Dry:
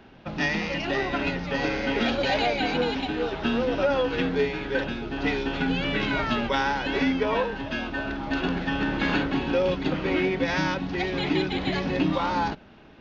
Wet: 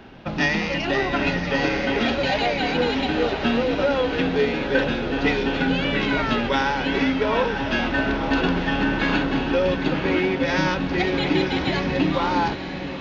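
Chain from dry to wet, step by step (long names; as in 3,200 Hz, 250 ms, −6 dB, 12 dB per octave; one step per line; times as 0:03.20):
speech leveller within 4 dB 0.5 s
feedback delay with all-pass diffusion 951 ms, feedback 55%, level −9 dB
level +3.5 dB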